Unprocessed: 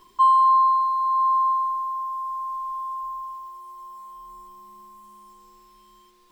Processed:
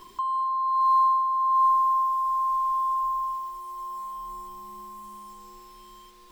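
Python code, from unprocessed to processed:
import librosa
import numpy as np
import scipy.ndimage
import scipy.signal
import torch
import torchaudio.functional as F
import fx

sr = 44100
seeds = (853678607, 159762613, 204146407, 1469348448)

y = fx.over_compress(x, sr, threshold_db=-24.0, ratio=-1.0)
y = fx.echo_filtered(y, sr, ms=252, feedback_pct=74, hz=870.0, wet_db=-9.5)
y = y * librosa.db_to_amplitude(2.5)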